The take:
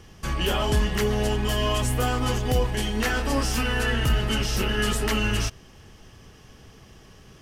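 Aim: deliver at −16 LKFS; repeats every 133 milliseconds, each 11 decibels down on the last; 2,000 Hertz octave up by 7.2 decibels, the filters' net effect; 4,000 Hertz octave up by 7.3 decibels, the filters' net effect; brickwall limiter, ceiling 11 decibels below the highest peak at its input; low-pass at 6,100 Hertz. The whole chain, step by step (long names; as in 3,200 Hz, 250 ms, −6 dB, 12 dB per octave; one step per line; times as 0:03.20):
low-pass filter 6,100 Hz
parametric band 2,000 Hz +7.5 dB
parametric band 4,000 Hz +7.5 dB
brickwall limiter −18.5 dBFS
repeating echo 133 ms, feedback 28%, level −11 dB
level +10.5 dB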